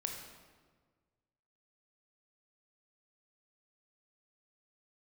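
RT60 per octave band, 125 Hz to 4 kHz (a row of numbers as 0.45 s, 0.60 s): 1.9 s, 1.7 s, 1.6 s, 1.4 s, 1.2 s, 1.0 s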